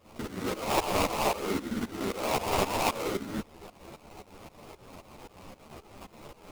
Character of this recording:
a quantiser's noise floor 8 bits, dither triangular
tremolo saw up 3.8 Hz, depth 90%
aliases and images of a low sample rate 1,700 Hz, jitter 20%
a shimmering, thickened sound

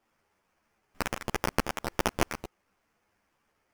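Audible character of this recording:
aliases and images of a low sample rate 3,900 Hz, jitter 20%
a shimmering, thickened sound

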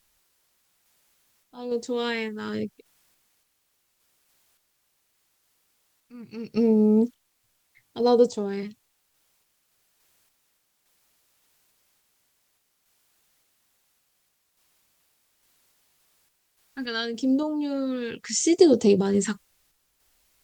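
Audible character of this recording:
phaser sweep stages 2, 0.76 Hz, lowest notch 600–1,700 Hz
a quantiser's noise floor 12 bits, dither triangular
sample-and-hold tremolo 3.5 Hz
Opus

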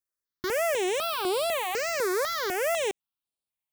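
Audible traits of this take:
notches that jump at a steady rate 4 Hz 800–6,300 Hz

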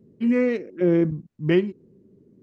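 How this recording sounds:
background noise floor −59 dBFS
spectral slope −7.0 dB per octave

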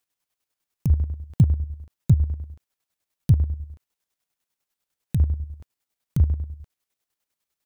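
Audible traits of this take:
chopped level 10 Hz, depth 60%, duty 40%

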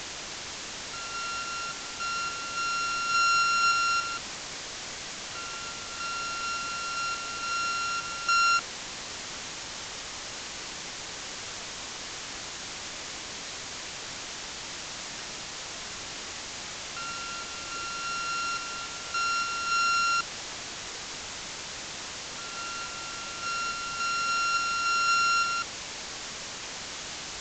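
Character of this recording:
a buzz of ramps at a fixed pitch in blocks of 32 samples
sample-and-hold tremolo, depth 90%
a quantiser's noise floor 6 bits, dither triangular
mu-law

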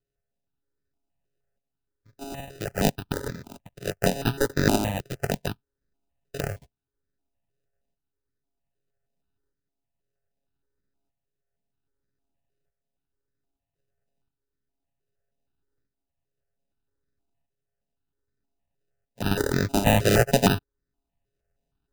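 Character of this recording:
a buzz of ramps at a fixed pitch in blocks of 64 samples
tremolo saw up 0.63 Hz, depth 60%
aliases and images of a low sample rate 1,100 Hz, jitter 0%
notches that jump at a steady rate 6.4 Hz 240–2,900 Hz

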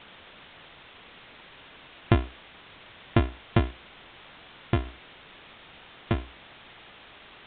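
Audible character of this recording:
a buzz of ramps at a fixed pitch in blocks of 128 samples
sample-and-hold tremolo
a quantiser's noise floor 8 bits, dither triangular
A-law companding

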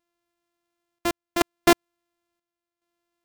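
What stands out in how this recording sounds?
a buzz of ramps at a fixed pitch in blocks of 128 samples
chopped level 0.71 Hz, depth 65%, duty 70%
AAC

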